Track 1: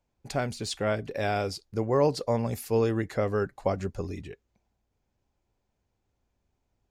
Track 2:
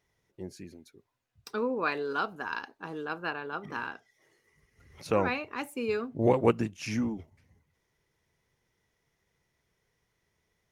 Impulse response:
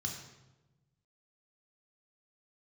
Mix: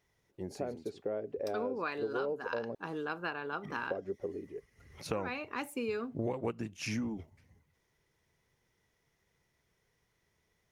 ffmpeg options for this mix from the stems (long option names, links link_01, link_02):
-filter_complex "[0:a]bandpass=frequency=430:width_type=q:width=2.3:csg=0,adelay=250,volume=1.5dB,asplit=3[link_01][link_02][link_03];[link_01]atrim=end=2.75,asetpts=PTS-STARTPTS,afade=type=out:start_time=2.746:duration=0.004:curve=hsin[link_04];[link_02]atrim=start=2.75:end=3.71,asetpts=PTS-STARTPTS,volume=0[link_05];[link_03]atrim=start=3.71,asetpts=PTS-STARTPTS,afade=type=in:duration=0.004:curve=hsin[link_06];[link_04][link_05][link_06]concat=n=3:v=0:a=1[link_07];[1:a]volume=0dB[link_08];[link_07][link_08]amix=inputs=2:normalize=0,acompressor=threshold=-32dB:ratio=6"